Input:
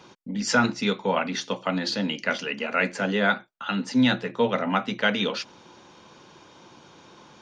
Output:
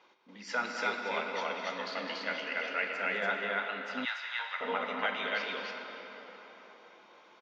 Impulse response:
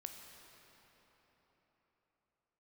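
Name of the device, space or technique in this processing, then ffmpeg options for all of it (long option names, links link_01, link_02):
station announcement: -filter_complex "[0:a]highpass=470,lowpass=3800,equalizer=frequency=2100:width_type=o:width=0.25:gain=6,aecho=1:1:207|285.7:0.316|0.891[link_01];[1:a]atrim=start_sample=2205[link_02];[link_01][link_02]afir=irnorm=-1:irlink=0,asettb=1/sr,asplit=3[link_03][link_04][link_05];[link_03]atrim=end=4.054[link_06];[link_04]atrim=start=4.05:end=4.61,asetpts=PTS-STARTPTS,afade=type=in:duration=0.004:curve=qsin,afade=type=out:start_time=0.556:duration=0.004:curve=qsin,highpass=frequency=960:width=0.5412,highpass=frequency=960:width=1.3066[link_07];[link_05]atrim=start=4.606[link_08];[link_06][link_07]acrossfade=duration=0.004:curve1=hsin:curve2=qsin[link_09];[link_09][link_08]acrossfade=duration=0.004:curve1=qsin:curve2=hsin,volume=-5.5dB"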